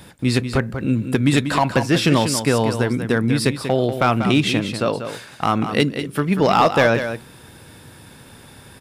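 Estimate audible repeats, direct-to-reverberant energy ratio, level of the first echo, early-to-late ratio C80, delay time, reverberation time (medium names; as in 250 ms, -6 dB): 1, no reverb, -9.0 dB, no reverb, 190 ms, no reverb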